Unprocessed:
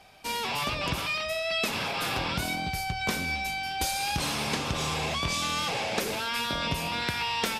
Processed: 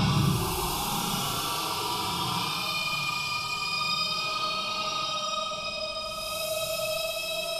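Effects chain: fixed phaser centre 380 Hz, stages 8; Paulstretch 17×, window 0.05 s, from 0.92; gain +6 dB

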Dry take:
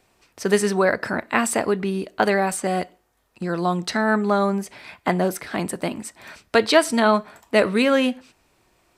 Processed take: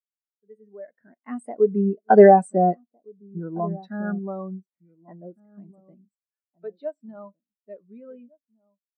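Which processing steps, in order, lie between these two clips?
opening faded in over 2.09 s; Doppler pass-by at 2.31, 18 m/s, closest 12 m; in parallel at -6 dB: soft clip -27 dBFS, distortion -6 dB; on the sum: outdoor echo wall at 250 m, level -10 dB; spectral expander 2.5:1; gain +2.5 dB

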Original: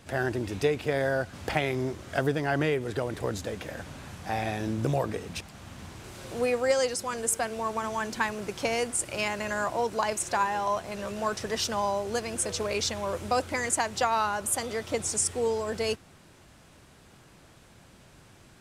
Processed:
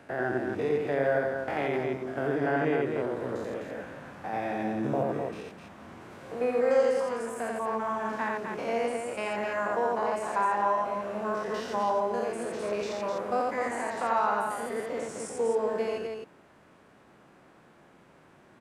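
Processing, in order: stepped spectrum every 0.1 s; three-band isolator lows -17 dB, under 170 Hz, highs -15 dB, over 2200 Hz; loudspeakers at several distances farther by 30 m -2 dB, 88 m -5 dB

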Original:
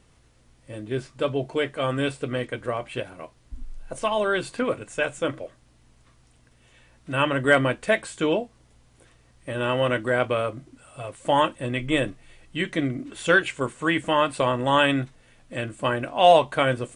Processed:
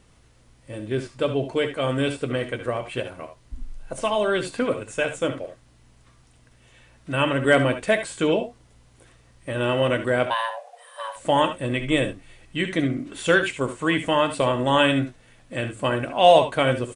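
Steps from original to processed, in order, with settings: 10.26–11.16 frequency shift +450 Hz; dynamic EQ 1300 Hz, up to -4 dB, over -32 dBFS, Q 1.1; early reflections 66 ms -12.5 dB, 77 ms -13.5 dB; gain +2 dB

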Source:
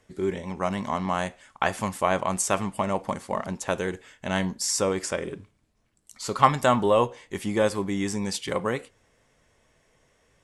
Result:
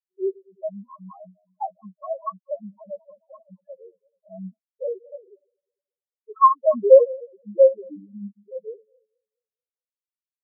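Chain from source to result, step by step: regenerating reverse delay 0.108 s, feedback 76%, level -11 dB; steep high-pass 180 Hz 72 dB/oct; tone controls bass -3 dB, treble +4 dB; loudest bins only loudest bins 2; in parallel at -7 dB: soft clip -27.5 dBFS, distortion -9 dB; on the sum: LFO low-pass saw down 1.1 Hz 790–1600 Hz; maximiser +12 dB; spectral expander 2.5:1; gain -1 dB

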